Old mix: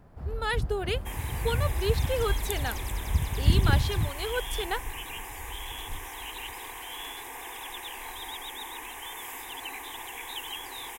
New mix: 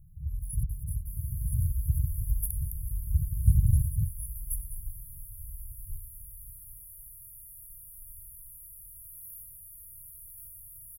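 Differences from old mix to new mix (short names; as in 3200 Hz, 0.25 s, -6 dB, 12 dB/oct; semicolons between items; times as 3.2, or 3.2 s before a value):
speech +10.5 dB; master: add brick-wall FIR band-stop 180–9800 Hz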